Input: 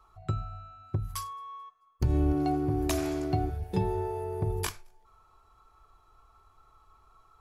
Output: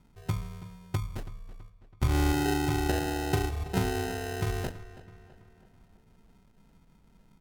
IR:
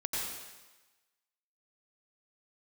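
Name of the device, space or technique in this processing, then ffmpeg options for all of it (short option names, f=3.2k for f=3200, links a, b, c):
crushed at another speed: -filter_complex "[0:a]asetrate=55125,aresample=44100,acrusher=samples=31:mix=1:aa=0.000001,asetrate=35280,aresample=44100,asplit=2[a][b];[b]adelay=328,lowpass=f=4.3k:p=1,volume=-16dB,asplit=2[c][d];[d]adelay=328,lowpass=f=4.3k:p=1,volume=0.51,asplit=2[e][f];[f]adelay=328,lowpass=f=4.3k:p=1,volume=0.51,asplit=2[g][h];[h]adelay=328,lowpass=f=4.3k:p=1,volume=0.51,asplit=2[i][j];[j]adelay=328,lowpass=f=4.3k:p=1,volume=0.51[k];[a][c][e][g][i][k]amix=inputs=6:normalize=0"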